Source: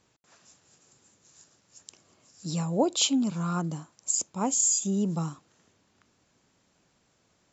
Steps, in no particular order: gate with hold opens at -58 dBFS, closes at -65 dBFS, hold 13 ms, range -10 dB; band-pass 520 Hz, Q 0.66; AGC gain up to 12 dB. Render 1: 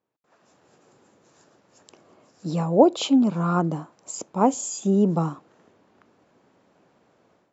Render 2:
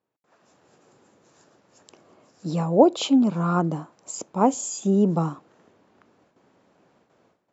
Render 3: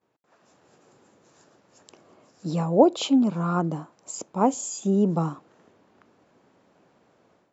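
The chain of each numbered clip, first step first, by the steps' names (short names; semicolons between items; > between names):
band-pass > AGC > gate with hold; gate with hold > band-pass > AGC; AGC > gate with hold > band-pass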